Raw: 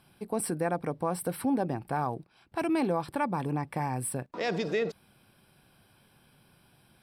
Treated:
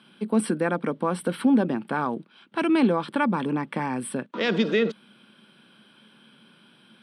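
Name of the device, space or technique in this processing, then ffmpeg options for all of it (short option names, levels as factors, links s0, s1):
television speaker: -af "highpass=f=180:w=0.5412,highpass=f=180:w=1.3066,equalizer=f=220:t=q:w=4:g=9,equalizer=f=740:t=q:w=4:g=-9,equalizer=f=1400:t=q:w=4:g=5,equalizer=f=3200:t=q:w=4:g=9,equalizer=f=5200:t=q:w=4:g=-7,equalizer=f=7300:t=q:w=4:g=-9,lowpass=f=8400:w=0.5412,lowpass=f=8400:w=1.3066,volume=2"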